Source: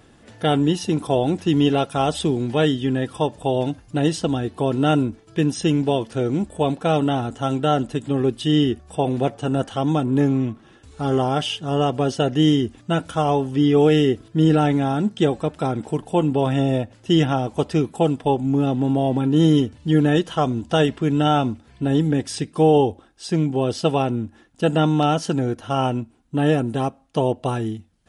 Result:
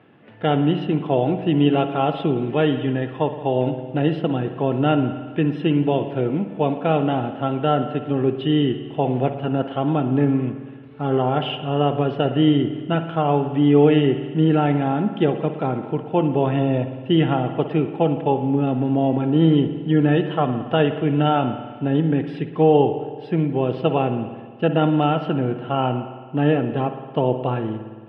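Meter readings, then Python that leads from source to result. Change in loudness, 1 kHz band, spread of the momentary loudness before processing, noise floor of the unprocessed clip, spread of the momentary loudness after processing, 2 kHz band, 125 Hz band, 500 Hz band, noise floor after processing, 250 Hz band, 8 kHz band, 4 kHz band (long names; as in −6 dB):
0.0 dB, +0.5 dB, 7 LU, −52 dBFS, 7 LU, 0.0 dB, 0.0 dB, +0.5 dB, −37 dBFS, 0.0 dB, below −35 dB, −3.5 dB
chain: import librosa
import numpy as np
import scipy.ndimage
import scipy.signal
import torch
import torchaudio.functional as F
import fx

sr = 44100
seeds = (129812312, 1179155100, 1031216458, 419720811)

y = scipy.signal.sosfilt(scipy.signal.ellip(3, 1.0, 40, [120.0, 2800.0], 'bandpass', fs=sr, output='sos'), x)
y = fx.rev_spring(y, sr, rt60_s=1.6, pass_ms=(55,), chirp_ms=75, drr_db=8.5)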